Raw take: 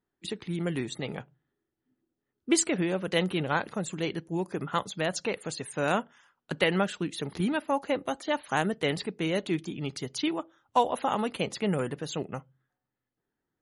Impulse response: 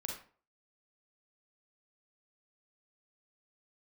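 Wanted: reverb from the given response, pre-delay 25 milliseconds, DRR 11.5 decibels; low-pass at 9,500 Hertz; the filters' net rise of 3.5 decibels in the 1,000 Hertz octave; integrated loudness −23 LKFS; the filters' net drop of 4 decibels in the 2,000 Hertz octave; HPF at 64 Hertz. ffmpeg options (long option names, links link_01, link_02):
-filter_complex "[0:a]highpass=64,lowpass=9500,equalizer=frequency=1000:width_type=o:gain=6,equalizer=frequency=2000:width_type=o:gain=-7.5,asplit=2[link_01][link_02];[1:a]atrim=start_sample=2205,adelay=25[link_03];[link_02][link_03]afir=irnorm=-1:irlink=0,volume=-11dB[link_04];[link_01][link_04]amix=inputs=2:normalize=0,volume=6.5dB"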